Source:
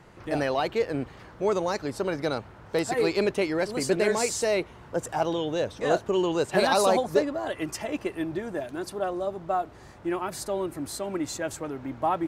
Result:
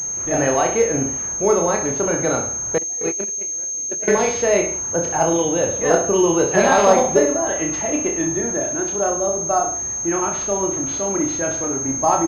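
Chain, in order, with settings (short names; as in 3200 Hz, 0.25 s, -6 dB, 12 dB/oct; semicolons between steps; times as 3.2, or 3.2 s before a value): reverse bouncing-ball echo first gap 30 ms, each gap 1.1×, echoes 5; 2.78–4.08 gate -18 dBFS, range -30 dB; pulse-width modulation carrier 6400 Hz; gain +6 dB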